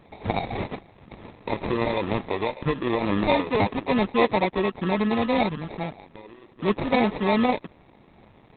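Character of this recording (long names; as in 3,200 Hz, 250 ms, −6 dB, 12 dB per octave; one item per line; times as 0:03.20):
aliases and images of a low sample rate 1,500 Hz, jitter 0%
Opus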